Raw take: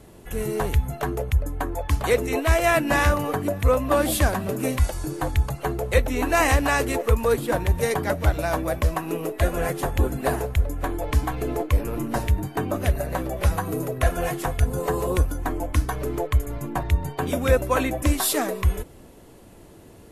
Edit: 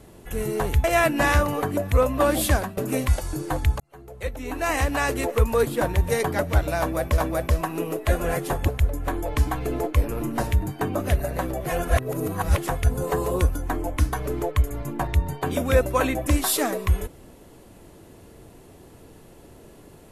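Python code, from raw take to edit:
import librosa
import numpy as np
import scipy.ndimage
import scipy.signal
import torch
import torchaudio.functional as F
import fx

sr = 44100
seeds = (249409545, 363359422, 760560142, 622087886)

y = fx.edit(x, sr, fx.cut(start_s=0.84, length_s=1.71),
    fx.fade_out_to(start_s=4.18, length_s=0.3, curve='qsin', floor_db=-17.5),
    fx.fade_in_span(start_s=5.51, length_s=1.59),
    fx.repeat(start_s=8.51, length_s=0.38, count=2),
    fx.cut(start_s=10.01, length_s=0.43),
    fx.reverse_span(start_s=13.42, length_s=0.92), tone=tone)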